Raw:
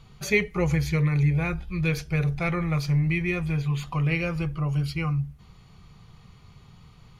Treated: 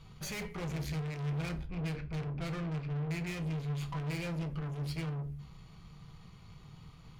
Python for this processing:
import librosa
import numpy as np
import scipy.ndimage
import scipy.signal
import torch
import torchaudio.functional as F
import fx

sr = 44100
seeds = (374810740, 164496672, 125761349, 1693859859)

y = fx.lowpass(x, sr, hz=2400.0, slope=24, at=(1.65, 3.25), fade=0.02)
y = fx.tube_stage(y, sr, drive_db=36.0, bias=0.4)
y = fx.room_shoebox(y, sr, seeds[0], volume_m3=220.0, walls='furnished', distance_m=0.64)
y = y * 10.0 ** (-2.0 / 20.0)